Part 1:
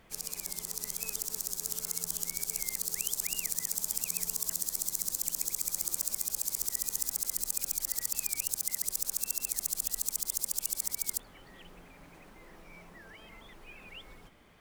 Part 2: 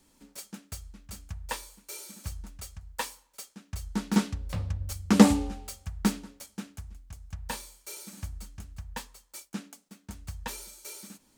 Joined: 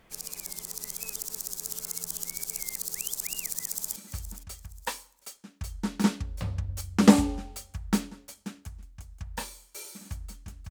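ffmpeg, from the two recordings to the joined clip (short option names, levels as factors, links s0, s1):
-filter_complex "[0:a]apad=whole_dur=10.7,atrim=end=10.7,atrim=end=3.962[s0];[1:a]atrim=start=2.078:end=8.82[s1];[s0][s1]acrossfade=d=0.004:c1=hsin:c2=hsin,asplit=2[s2][s3];[s3]afade=t=in:st=3.6:d=0.01,afade=t=out:st=3.96:d=0.01,aecho=0:1:470|940|1410:0.211349|0.0634047|0.0190214[s4];[s2][s4]amix=inputs=2:normalize=0"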